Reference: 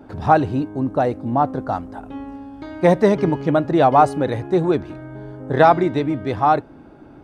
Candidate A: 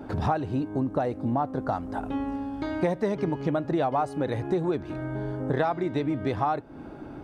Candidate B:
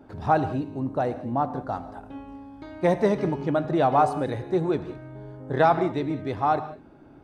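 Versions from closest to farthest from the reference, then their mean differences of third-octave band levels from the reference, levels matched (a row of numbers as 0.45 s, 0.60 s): B, A; 1.5 dB, 4.5 dB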